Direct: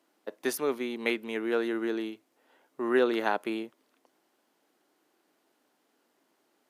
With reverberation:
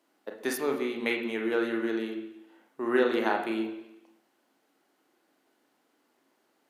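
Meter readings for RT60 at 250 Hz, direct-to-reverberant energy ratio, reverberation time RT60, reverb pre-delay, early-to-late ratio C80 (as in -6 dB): 0.85 s, 1.5 dB, 0.85 s, 28 ms, 9.5 dB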